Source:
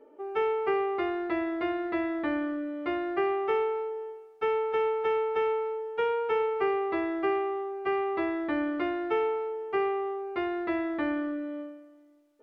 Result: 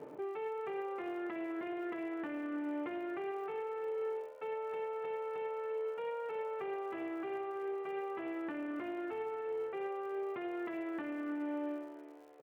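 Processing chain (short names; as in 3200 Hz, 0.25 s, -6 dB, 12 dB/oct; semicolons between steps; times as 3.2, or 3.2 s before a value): half-wave gain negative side -12 dB; Chebyshev band-pass 140–2800 Hz, order 3; low shelf 190 Hz +8 dB; reverse; compressor, threshold -38 dBFS, peak gain reduction 12 dB; reverse; limiter -42 dBFS, peak gain reduction 12 dB; on a send: frequency-shifting echo 0.337 s, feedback 60%, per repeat +75 Hz, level -20 dB; on the sum: crackle 120/s -64 dBFS; gain +9 dB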